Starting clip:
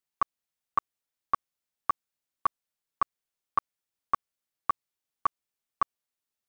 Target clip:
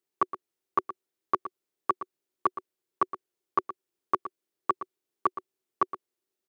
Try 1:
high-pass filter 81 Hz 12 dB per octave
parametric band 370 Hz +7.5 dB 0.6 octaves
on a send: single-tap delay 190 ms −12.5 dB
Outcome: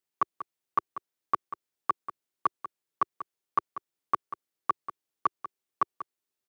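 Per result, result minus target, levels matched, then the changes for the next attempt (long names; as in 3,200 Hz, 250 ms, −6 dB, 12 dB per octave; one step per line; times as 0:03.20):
echo 72 ms late; 500 Hz band −6.5 dB
change: single-tap delay 118 ms −12.5 dB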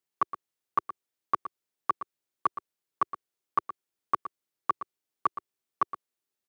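500 Hz band −6.5 dB
change: parametric band 370 Hz +19 dB 0.6 octaves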